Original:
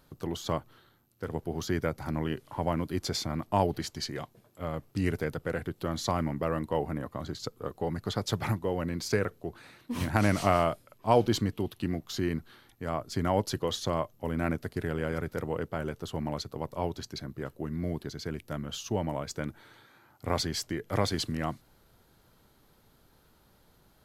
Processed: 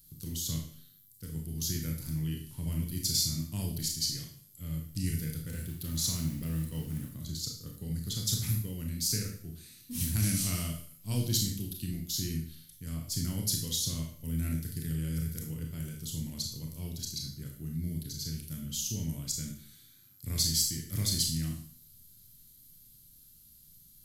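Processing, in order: FFT filter 160 Hz 0 dB, 790 Hz -30 dB, 4.6 kHz +4 dB, 12 kHz +15 dB; 5.47–7.14 s: modulation noise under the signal 22 dB; Schroeder reverb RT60 0.5 s, combs from 25 ms, DRR 0.5 dB; trim -1.5 dB

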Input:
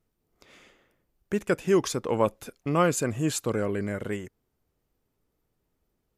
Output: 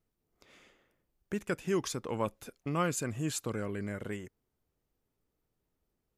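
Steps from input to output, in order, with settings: dynamic bell 530 Hz, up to -5 dB, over -33 dBFS, Q 0.8; trim -5.5 dB

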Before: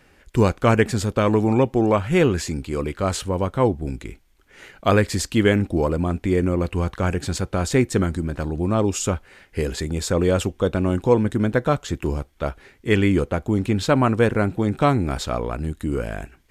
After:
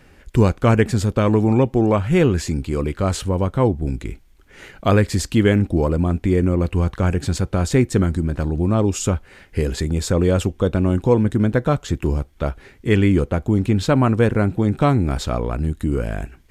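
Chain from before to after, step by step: bass shelf 280 Hz +6.5 dB; in parallel at -2.5 dB: compression, threshold -25 dBFS, peak gain reduction 16 dB; on the sum: trim -2.5 dB

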